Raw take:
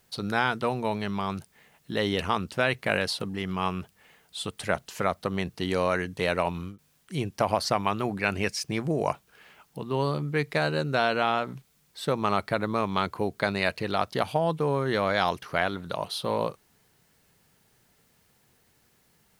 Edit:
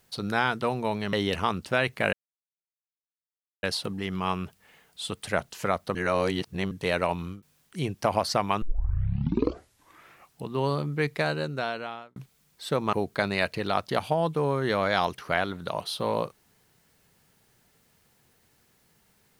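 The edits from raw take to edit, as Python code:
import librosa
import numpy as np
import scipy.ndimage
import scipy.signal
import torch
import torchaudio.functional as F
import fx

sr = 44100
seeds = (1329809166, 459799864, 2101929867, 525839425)

y = fx.edit(x, sr, fx.cut(start_s=1.13, length_s=0.86),
    fx.insert_silence(at_s=2.99, length_s=1.5),
    fx.reverse_span(start_s=5.31, length_s=0.76),
    fx.tape_start(start_s=7.98, length_s=1.85),
    fx.fade_out_span(start_s=10.49, length_s=1.03),
    fx.cut(start_s=12.29, length_s=0.88), tone=tone)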